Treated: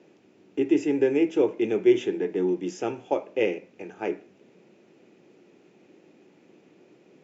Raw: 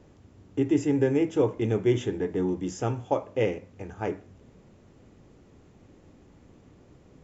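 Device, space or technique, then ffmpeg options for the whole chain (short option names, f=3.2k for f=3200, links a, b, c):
television speaker: -af "highpass=f=190:w=0.5412,highpass=f=190:w=1.3066,equalizer=f=250:t=q:w=4:g=-4,equalizer=f=360:t=q:w=4:g=6,equalizer=f=1.1k:t=q:w=4:g=-6,equalizer=f=2.5k:t=q:w=4:g=8,lowpass=f=6.7k:w=0.5412,lowpass=f=6.7k:w=1.3066"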